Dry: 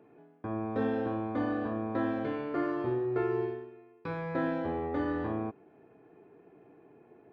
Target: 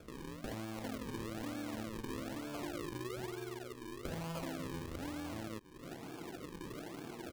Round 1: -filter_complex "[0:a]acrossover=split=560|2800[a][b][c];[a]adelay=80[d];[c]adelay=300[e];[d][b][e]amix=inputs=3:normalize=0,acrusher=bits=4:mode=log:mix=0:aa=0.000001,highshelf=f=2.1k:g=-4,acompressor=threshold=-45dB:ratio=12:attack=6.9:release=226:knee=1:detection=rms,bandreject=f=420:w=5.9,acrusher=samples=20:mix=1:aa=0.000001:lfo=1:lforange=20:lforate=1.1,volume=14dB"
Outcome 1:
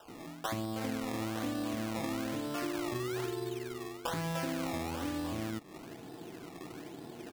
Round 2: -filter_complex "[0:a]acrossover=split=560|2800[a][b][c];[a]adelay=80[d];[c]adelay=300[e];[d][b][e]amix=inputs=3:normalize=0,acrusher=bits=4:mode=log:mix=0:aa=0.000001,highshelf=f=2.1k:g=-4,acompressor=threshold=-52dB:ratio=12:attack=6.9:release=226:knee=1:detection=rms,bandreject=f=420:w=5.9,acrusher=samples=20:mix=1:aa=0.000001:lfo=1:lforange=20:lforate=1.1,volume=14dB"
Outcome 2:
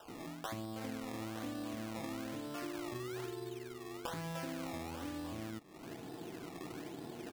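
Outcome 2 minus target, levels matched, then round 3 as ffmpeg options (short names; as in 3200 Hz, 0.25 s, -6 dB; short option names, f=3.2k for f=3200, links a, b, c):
decimation with a swept rate: distortion -8 dB
-filter_complex "[0:a]acrossover=split=560|2800[a][b][c];[a]adelay=80[d];[c]adelay=300[e];[d][b][e]amix=inputs=3:normalize=0,acrusher=bits=4:mode=log:mix=0:aa=0.000001,highshelf=f=2.1k:g=-4,acompressor=threshold=-52dB:ratio=12:attack=6.9:release=226:knee=1:detection=rms,bandreject=f=420:w=5.9,acrusher=samples=44:mix=1:aa=0.000001:lfo=1:lforange=44:lforate=1.1,volume=14dB"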